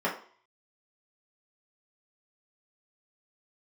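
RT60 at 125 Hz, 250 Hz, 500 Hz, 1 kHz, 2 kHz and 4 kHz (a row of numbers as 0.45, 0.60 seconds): 0.25, 0.40, 0.45, 0.50, 0.45, 0.50 seconds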